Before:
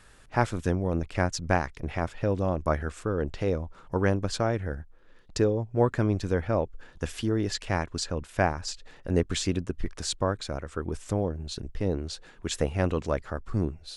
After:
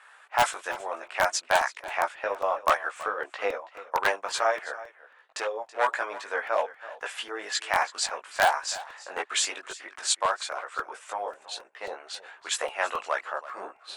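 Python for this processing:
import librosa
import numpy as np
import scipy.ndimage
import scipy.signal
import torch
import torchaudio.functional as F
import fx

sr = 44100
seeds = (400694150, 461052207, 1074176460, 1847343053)

p1 = np.minimum(x, 2.0 * 10.0 ** (-17.5 / 20.0) - x)
p2 = scipy.signal.sosfilt(scipy.signal.butter(4, 740.0, 'highpass', fs=sr, output='sos'), p1)
p3 = fx.env_lowpass(p2, sr, base_hz=2500.0, full_db=-20.5)
p4 = fx.high_shelf_res(p3, sr, hz=6900.0, db=10.5, q=1.5)
p5 = fx.transient(p4, sr, attack_db=4, sustain_db=-3, at=(1.97, 4.09))
p6 = fx.chorus_voices(p5, sr, voices=6, hz=0.6, base_ms=18, depth_ms=2.9, mix_pct=45)
p7 = (np.mod(10.0 ** (21.5 / 20.0) * p6 + 1.0, 2.0) - 1.0) / 10.0 ** (21.5 / 20.0)
p8 = p6 + F.gain(torch.from_numpy(p7), -6.0).numpy()
p9 = fx.doubler(p8, sr, ms=21.0, db=-6, at=(8.5, 9.16))
p10 = p9 + fx.echo_single(p9, sr, ms=328, db=-17.0, dry=0)
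p11 = fx.buffer_crackle(p10, sr, first_s=0.53, period_s=0.27, block=128, kind='repeat')
y = F.gain(torch.from_numpy(p11), 8.0).numpy()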